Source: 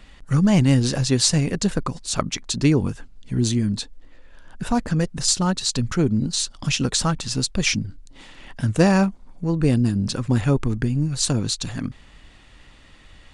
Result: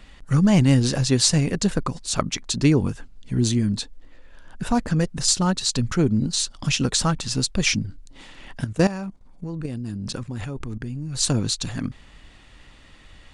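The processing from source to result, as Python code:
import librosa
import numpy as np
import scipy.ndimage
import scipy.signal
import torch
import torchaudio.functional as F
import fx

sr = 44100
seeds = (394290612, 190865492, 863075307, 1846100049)

y = fx.level_steps(x, sr, step_db=15, at=(8.64, 11.15))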